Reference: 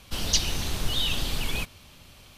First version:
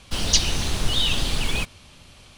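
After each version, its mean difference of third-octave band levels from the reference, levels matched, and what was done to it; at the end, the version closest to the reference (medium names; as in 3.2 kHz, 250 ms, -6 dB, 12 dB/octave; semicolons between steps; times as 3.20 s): 1.5 dB: steep low-pass 11 kHz 48 dB/octave; in parallel at -10.5 dB: bit crusher 6-bit; on the sum: trim +2.5 dB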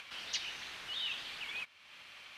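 9.0 dB: upward compressor, threshold -28 dBFS; band-pass filter 2 kHz, Q 1.5; trim -4.5 dB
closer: first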